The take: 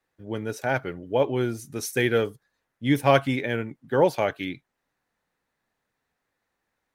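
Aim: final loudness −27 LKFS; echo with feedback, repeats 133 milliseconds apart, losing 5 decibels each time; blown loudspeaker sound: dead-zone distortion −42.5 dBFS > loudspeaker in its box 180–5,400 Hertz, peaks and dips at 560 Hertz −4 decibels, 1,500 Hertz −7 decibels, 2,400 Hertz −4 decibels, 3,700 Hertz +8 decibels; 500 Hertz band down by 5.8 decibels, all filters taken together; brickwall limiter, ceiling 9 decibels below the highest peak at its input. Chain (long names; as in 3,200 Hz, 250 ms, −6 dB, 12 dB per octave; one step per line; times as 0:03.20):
parametric band 500 Hz −4.5 dB
brickwall limiter −15 dBFS
repeating echo 133 ms, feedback 56%, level −5 dB
dead-zone distortion −42.5 dBFS
loudspeaker in its box 180–5,400 Hz, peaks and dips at 560 Hz −4 dB, 1,500 Hz −7 dB, 2,400 Hz −4 dB, 3,700 Hz +8 dB
level +4.5 dB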